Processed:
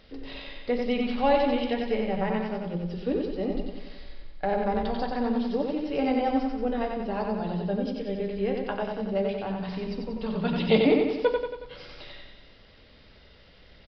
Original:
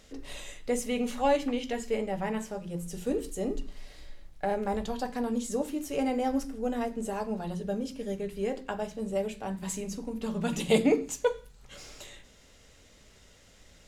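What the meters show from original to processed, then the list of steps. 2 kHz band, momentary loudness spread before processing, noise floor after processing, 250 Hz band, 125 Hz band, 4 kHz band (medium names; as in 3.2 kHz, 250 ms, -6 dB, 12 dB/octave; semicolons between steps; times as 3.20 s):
+4.0 dB, 16 LU, -54 dBFS, +4.0 dB, +5.0 dB, +4.0 dB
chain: feedback delay 92 ms, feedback 56%, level -4 dB; resampled via 11.025 kHz; trim +2 dB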